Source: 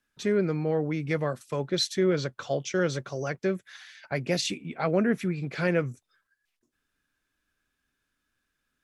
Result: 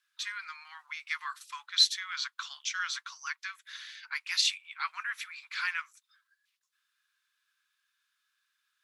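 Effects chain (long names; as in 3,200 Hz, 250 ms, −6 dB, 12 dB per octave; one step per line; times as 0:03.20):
Butterworth high-pass 1,000 Hz 72 dB per octave
parametric band 3,900 Hz +6 dB 0.82 octaves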